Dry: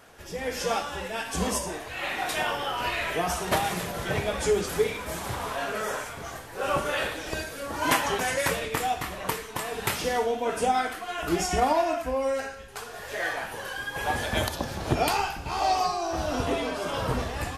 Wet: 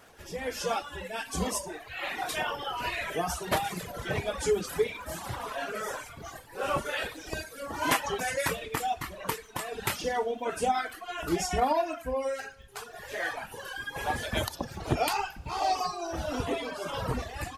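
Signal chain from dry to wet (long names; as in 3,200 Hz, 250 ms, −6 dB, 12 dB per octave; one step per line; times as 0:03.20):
surface crackle 38 per second −44 dBFS
reverb reduction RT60 1.3 s
level −2 dB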